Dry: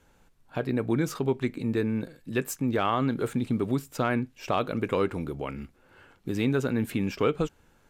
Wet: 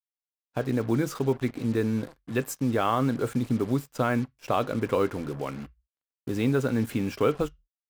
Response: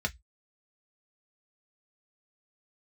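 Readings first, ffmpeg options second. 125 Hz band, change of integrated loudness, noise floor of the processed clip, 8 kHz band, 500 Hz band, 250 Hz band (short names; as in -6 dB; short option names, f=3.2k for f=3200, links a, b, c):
+1.5 dB, +1.0 dB, under -85 dBFS, 0.0 dB, +1.0 dB, +1.0 dB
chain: -filter_complex "[0:a]acrusher=bits=6:mix=0:aa=0.5,agate=range=-33dB:threshold=-38dB:ratio=3:detection=peak,asplit=2[a][b];[1:a]atrim=start_sample=2205,asetrate=35280,aresample=44100[c];[b][c]afir=irnorm=-1:irlink=0,volume=-18dB[d];[a][d]amix=inputs=2:normalize=0"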